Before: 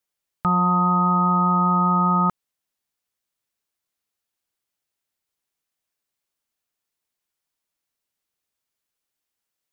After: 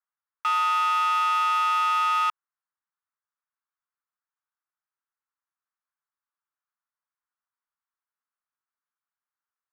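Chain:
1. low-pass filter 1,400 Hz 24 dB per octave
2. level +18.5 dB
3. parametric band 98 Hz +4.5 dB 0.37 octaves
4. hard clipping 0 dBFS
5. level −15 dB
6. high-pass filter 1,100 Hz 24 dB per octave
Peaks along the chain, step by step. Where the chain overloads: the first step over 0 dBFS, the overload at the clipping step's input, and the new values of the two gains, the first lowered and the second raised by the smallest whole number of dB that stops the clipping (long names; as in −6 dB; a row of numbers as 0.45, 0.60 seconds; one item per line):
−12.5, +6.0, +6.0, 0.0, −15.0, −17.0 dBFS
step 2, 6.0 dB
step 2 +12.5 dB, step 5 −9 dB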